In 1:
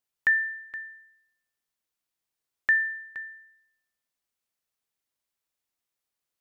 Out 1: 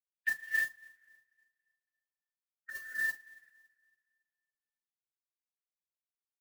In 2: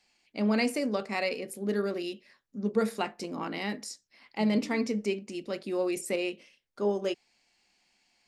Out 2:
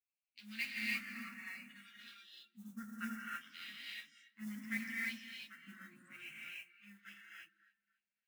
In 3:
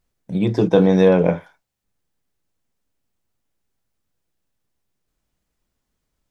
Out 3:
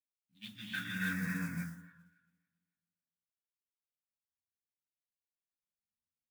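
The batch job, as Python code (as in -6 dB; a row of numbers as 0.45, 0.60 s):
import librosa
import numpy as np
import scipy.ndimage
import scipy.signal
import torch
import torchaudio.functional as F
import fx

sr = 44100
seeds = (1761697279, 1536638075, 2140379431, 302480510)

y = fx.wiener(x, sr, points=25)
y = fx.low_shelf(y, sr, hz=200.0, db=8.0)
y = fx.hum_notches(y, sr, base_hz=60, count=3)
y = fx.chorus_voices(y, sr, voices=4, hz=0.68, base_ms=11, depth_ms=3.4, mix_pct=50)
y = fx.filter_lfo_bandpass(y, sr, shape='sine', hz=0.64, low_hz=820.0, high_hz=3600.0, q=2.3)
y = fx.dynamic_eq(y, sr, hz=1700.0, q=2.8, threshold_db=-53.0, ratio=4.0, max_db=3)
y = scipy.signal.sosfilt(scipy.signal.ellip(3, 1.0, 40, [230.0, 1500.0], 'bandstop', fs=sr, output='sos'), y)
y = fx.echo_alternate(y, sr, ms=140, hz=880.0, feedback_pct=60, wet_db=-11)
y = fx.rev_gated(y, sr, seeds[0], gate_ms=350, shape='rising', drr_db=-4.5)
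y = fx.mod_noise(y, sr, seeds[1], snr_db=16)
y = fx.noise_reduce_blind(y, sr, reduce_db=11)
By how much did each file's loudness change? -8.5, -13.0, -22.0 LU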